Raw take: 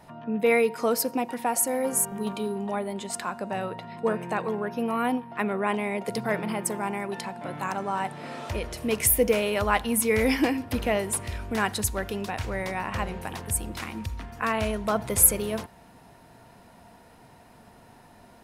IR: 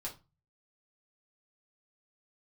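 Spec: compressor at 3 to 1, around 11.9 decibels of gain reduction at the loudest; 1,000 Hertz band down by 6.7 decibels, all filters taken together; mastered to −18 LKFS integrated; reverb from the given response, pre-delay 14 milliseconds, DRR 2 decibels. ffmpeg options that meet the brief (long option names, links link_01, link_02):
-filter_complex "[0:a]equalizer=frequency=1000:width_type=o:gain=-9,acompressor=threshold=-29dB:ratio=3,asplit=2[link_01][link_02];[1:a]atrim=start_sample=2205,adelay=14[link_03];[link_02][link_03]afir=irnorm=-1:irlink=0,volume=-1dB[link_04];[link_01][link_04]amix=inputs=2:normalize=0,volume=13dB"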